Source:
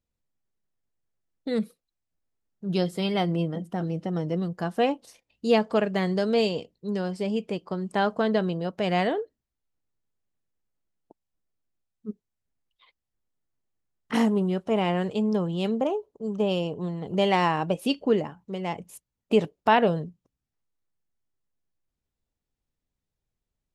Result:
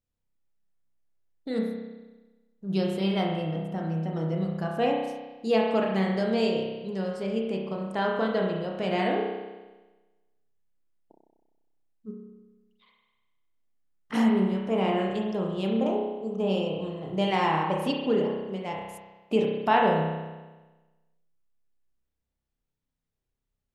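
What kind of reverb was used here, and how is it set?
spring reverb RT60 1.2 s, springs 31 ms, chirp 40 ms, DRR −1 dB
level −4.5 dB

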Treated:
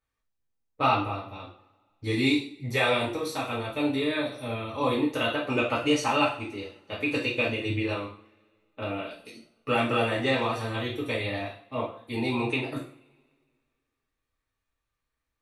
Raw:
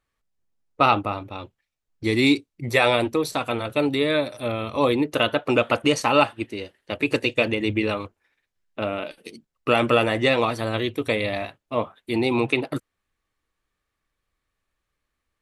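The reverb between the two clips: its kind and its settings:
coupled-rooms reverb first 0.43 s, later 2 s, from −28 dB, DRR −6.5 dB
level −12 dB

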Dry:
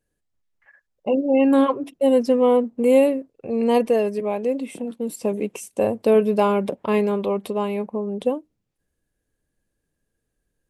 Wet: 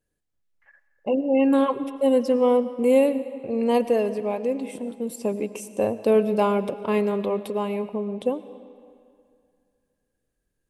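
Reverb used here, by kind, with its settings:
comb and all-pass reverb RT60 2.3 s, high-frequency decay 0.8×, pre-delay 65 ms, DRR 13.5 dB
level −2.5 dB

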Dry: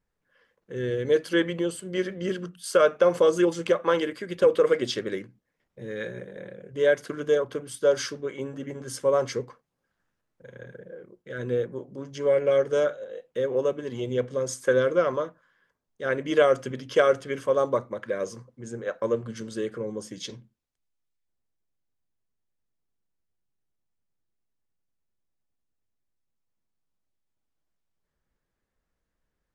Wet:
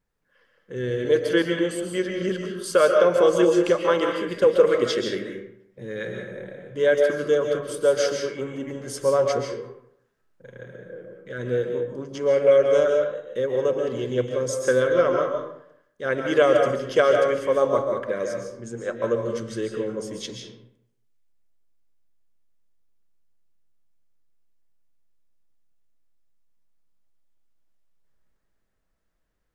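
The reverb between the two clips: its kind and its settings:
comb and all-pass reverb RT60 0.71 s, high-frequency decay 0.65×, pre-delay 100 ms, DRR 2.5 dB
level +1.5 dB

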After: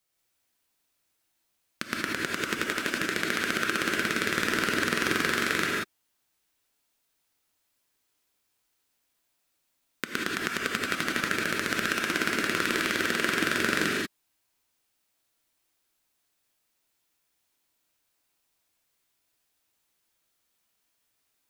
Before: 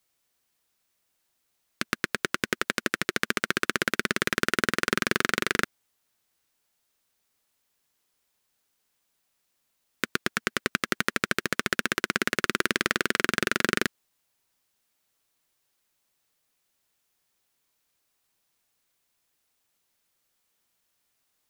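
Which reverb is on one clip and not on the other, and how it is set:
reverb whose tail is shaped and stops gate 210 ms rising, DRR −2.5 dB
level −4.5 dB

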